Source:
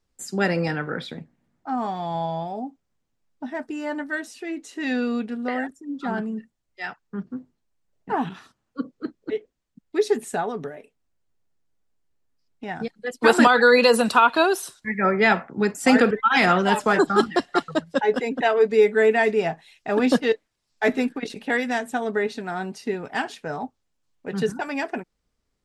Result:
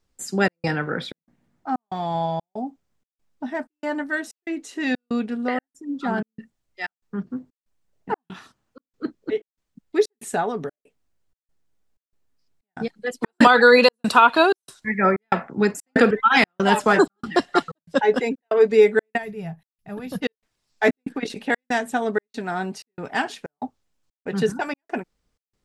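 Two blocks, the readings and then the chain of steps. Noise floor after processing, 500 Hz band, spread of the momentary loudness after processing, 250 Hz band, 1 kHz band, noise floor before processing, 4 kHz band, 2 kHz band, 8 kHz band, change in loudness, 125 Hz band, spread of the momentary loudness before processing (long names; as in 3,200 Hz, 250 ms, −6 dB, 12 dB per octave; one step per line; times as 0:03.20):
below −85 dBFS, +0.5 dB, 18 LU, −0.5 dB, +1.0 dB, −76 dBFS, +1.0 dB, +0.5 dB, −1.5 dB, +0.5 dB, +0.5 dB, 17 LU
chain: gain on a spectral selection 0:19.17–0:20.22, 210–10,000 Hz −17 dB
gate pattern "xxx.xxx." 94 BPM −60 dB
level +2.5 dB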